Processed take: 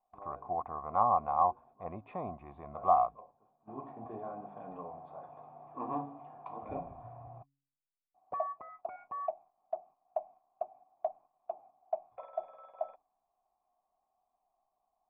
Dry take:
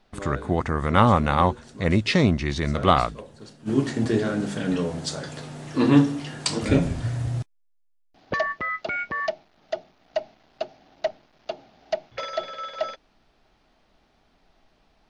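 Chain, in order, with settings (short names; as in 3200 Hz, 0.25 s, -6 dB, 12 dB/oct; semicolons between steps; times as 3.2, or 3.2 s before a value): vocal tract filter a; gate -58 dBFS, range -7 dB; de-hum 139.1 Hz, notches 2; gain +1.5 dB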